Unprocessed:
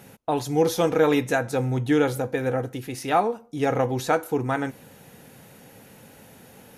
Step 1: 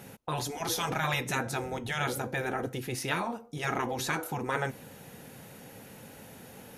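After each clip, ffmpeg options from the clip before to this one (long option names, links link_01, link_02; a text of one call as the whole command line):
ffmpeg -i in.wav -af "afftfilt=real='re*lt(hypot(re,im),0.251)':imag='im*lt(hypot(re,im),0.251)':win_size=1024:overlap=0.75" out.wav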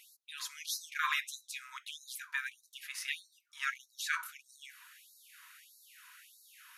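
ffmpeg -i in.wav -af "highshelf=frequency=3600:gain=-7.5,afftfilt=real='re*gte(b*sr/1024,910*pow(3900/910,0.5+0.5*sin(2*PI*1.6*pts/sr)))':imag='im*gte(b*sr/1024,910*pow(3900/910,0.5+0.5*sin(2*PI*1.6*pts/sr)))':win_size=1024:overlap=0.75,volume=1.5dB" out.wav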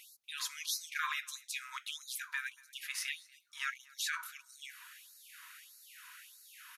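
ffmpeg -i in.wav -af "alimiter=level_in=3dB:limit=-24dB:level=0:latency=1:release=352,volume=-3dB,aecho=1:1:238:0.0631,volume=3dB" out.wav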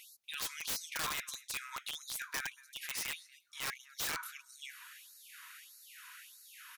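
ffmpeg -i in.wav -af "aeval=exprs='(mod(35.5*val(0)+1,2)-1)/35.5':channel_layout=same,volume=1dB" out.wav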